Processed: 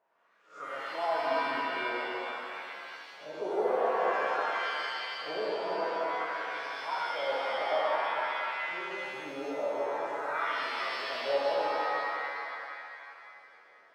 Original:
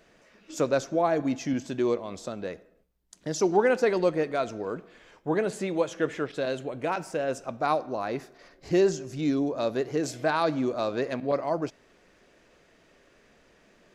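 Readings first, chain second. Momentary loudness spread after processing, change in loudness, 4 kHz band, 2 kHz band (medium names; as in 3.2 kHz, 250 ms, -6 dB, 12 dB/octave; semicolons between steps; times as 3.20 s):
12 LU, -4.5 dB, +3.0 dB, +3.5 dB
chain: reverse spectral sustain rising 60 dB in 0.36 s; wah-wah 0.5 Hz 530–1400 Hz, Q 4.9; pitch-shifted reverb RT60 2.5 s, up +7 st, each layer -2 dB, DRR -6.5 dB; trim -6 dB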